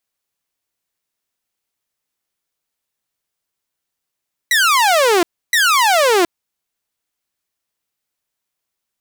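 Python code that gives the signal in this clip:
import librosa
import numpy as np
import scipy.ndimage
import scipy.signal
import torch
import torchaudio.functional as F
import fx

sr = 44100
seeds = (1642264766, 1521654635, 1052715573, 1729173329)

y = fx.laser_zaps(sr, level_db=-8, start_hz=2000.0, end_hz=330.0, length_s=0.72, wave='saw', shots=2, gap_s=0.3)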